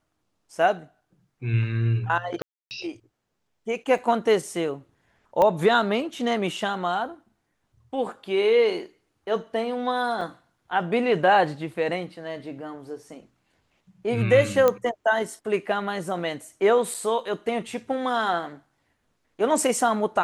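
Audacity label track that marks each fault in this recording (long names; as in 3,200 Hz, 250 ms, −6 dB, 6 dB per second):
2.420000	2.710000	drop-out 289 ms
3.980000	3.980000	drop-out 3.7 ms
5.420000	5.420000	click −11 dBFS
10.210000	10.210000	drop-out 2.8 ms
14.680000	14.680000	click −8 dBFS
16.940000	16.950000	drop-out 5.5 ms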